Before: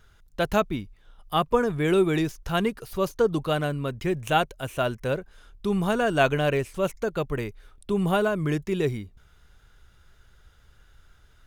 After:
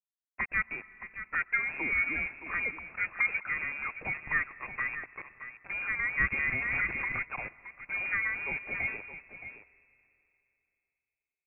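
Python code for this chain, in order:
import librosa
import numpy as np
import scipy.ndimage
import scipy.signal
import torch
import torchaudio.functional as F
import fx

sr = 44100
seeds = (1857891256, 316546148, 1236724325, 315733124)

y = scipy.signal.sosfilt(scipy.signal.butter(2, 70.0, 'highpass', fs=sr, output='sos'), x)
y = fx.tilt_shelf(y, sr, db=-7.0, hz=710.0)
y = fx.over_compress(y, sr, threshold_db=-39.0, ratio=-1.0, at=(4.9, 5.7))
y = fx.env_flanger(y, sr, rest_ms=8.9, full_db=-24.0)
y = fx.small_body(y, sr, hz=(260.0, 770.0, 1300.0), ring_ms=50, db=11, at=(2.78, 3.37))
y = fx.quant_dither(y, sr, seeds[0], bits=6, dither='none')
y = y + 10.0 ** (-11.5 / 20.0) * np.pad(y, (int(620 * sr / 1000.0), 0))[:len(y)]
y = fx.rev_freeverb(y, sr, rt60_s=3.0, hf_ratio=0.95, predelay_ms=85, drr_db=19.5)
y = fx.freq_invert(y, sr, carrier_hz=2600)
y = fx.pre_swell(y, sr, db_per_s=23.0, at=(6.34, 7.23))
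y = y * 10.0 ** (-4.5 / 20.0)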